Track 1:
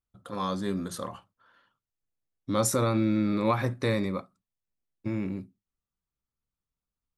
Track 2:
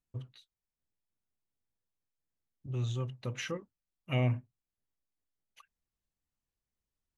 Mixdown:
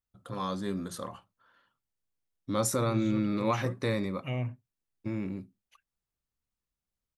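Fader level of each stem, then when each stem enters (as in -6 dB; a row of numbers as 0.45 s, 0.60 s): -3.0 dB, -4.0 dB; 0.00 s, 0.15 s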